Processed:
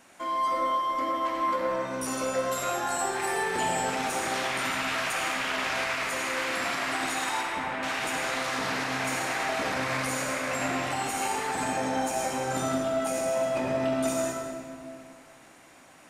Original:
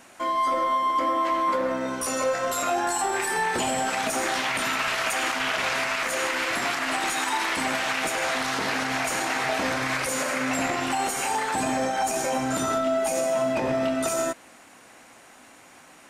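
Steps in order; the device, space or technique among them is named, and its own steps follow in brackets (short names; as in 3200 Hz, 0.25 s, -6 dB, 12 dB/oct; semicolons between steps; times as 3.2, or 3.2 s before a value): 7.41–7.83 air absorption 410 m; stairwell (reverb RT60 2.3 s, pre-delay 40 ms, DRR 0.5 dB); gain -6 dB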